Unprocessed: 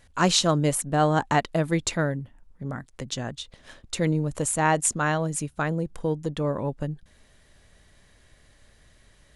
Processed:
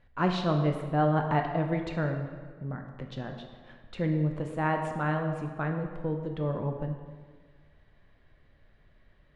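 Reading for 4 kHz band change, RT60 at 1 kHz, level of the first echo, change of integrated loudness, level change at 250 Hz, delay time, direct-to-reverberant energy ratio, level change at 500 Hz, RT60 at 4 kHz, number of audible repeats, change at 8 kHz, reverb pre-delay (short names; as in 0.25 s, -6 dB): -14.5 dB, 1.5 s, none, -5.0 dB, -3.0 dB, none, 3.5 dB, -4.5 dB, 1.1 s, none, under -30 dB, 5 ms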